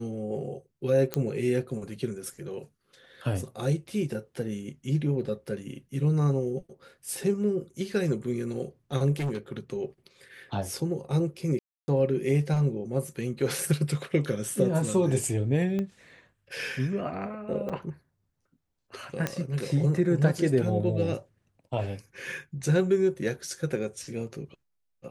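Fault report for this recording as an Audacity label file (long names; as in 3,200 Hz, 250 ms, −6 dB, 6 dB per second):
1.140000	1.140000	click −12 dBFS
9.160000	9.580000	clipping −26 dBFS
11.590000	11.880000	drop-out 290 ms
15.790000	15.790000	click −20 dBFS
17.690000	17.700000	drop-out 6.5 ms
19.270000	19.270000	click −13 dBFS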